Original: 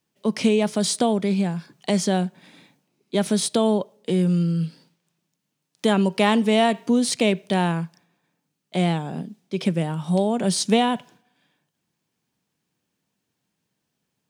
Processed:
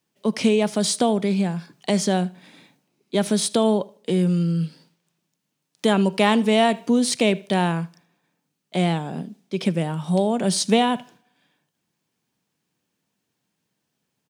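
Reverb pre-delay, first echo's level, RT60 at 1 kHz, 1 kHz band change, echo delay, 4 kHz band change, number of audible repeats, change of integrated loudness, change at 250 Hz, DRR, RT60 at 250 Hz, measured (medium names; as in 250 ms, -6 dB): no reverb, -23.0 dB, no reverb, +1.0 dB, 77 ms, +1.0 dB, 2, +0.5 dB, +0.5 dB, no reverb, no reverb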